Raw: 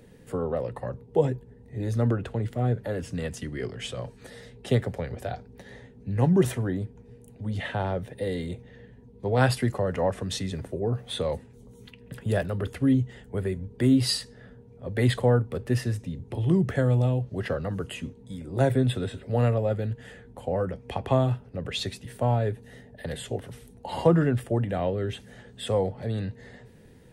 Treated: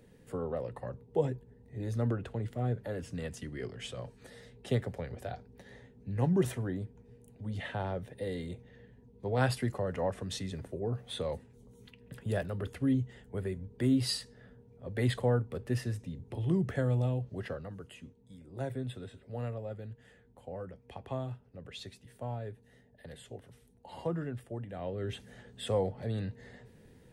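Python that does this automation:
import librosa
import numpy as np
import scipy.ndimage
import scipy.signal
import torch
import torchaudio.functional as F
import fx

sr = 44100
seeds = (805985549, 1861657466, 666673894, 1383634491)

y = fx.gain(x, sr, db=fx.line((17.32, -7.0), (17.79, -14.5), (24.71, -14.5), (25.13, -5.0)))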